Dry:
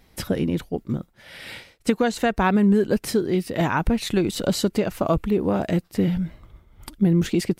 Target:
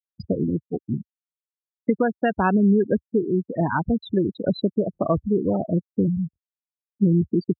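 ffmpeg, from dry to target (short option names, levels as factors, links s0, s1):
-af "afftfilt=real='re*gte(hypot(re,im),0.158)':imag='im*gte(hypot(re,im),0.158)':win_size=1024:overlap=0.75,highpass=f=73:w=0.5412,highpass=f=73:w=1.3066"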